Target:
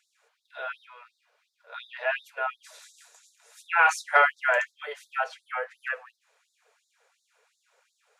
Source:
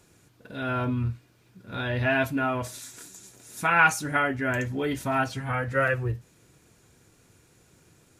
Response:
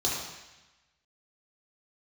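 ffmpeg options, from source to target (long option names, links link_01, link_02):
-filter_complex "[0:a]asplit=3[link_01][link_02][link_03];[link_01]afade=type=out:start_time=3.87:duration=0.02[link_04];[link_02]acontrast=86,afade=type=in:start_time=3.87:duration=0.02,afade=type=out:start_time=4.64:duration=0.02[link_05];[link_03]afade=type=in:start_time=4.64:duration=0.02[link_06];[link_04][link_05][link_06]amix=inputs=3:normalize=0,aemphasis=mode=reproduction:type=75fm,afftfilt=real='re*gte(b*sr/1024,390*pow(3600/390,0.5+0.5*sin(2*PI*2.8*pts/sr)))':imag='im*gte(b*sr/1024,390*pow(3600/390,0.5+0.5*sin(2*PI*2.8*pts/sr)))':win_size=1024:overlap=0.75"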